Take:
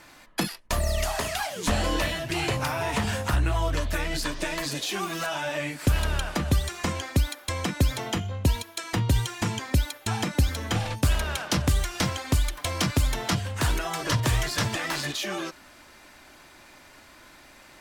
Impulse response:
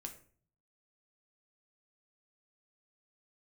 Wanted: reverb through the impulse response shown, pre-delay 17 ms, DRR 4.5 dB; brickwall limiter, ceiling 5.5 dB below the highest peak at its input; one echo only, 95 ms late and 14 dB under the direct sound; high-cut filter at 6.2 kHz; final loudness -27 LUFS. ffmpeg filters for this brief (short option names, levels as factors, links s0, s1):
-filter_complex "[0:a]lowpass=6200,alimiter=limit=0.158:level=0:latency=1,aecho=1:1:95:0.2,asplit=2[s0][s1];[1:a]atrim=start_sample=2205,adelay=17[s2];[s1][s2]afir=irnorm=-1:irlink=0,volume=0.944[s3];[s0][s3]amix=inputs=2:normalize=0"